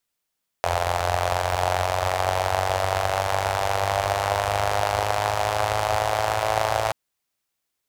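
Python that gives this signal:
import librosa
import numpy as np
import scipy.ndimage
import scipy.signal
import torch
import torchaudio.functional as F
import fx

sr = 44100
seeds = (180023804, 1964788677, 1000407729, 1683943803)

y = fx.engine_four_rev(sr, seeds[0], length_s=6.28, rpm=2600, resonances_hz=(83.0, 690.0), end_rpm=3300)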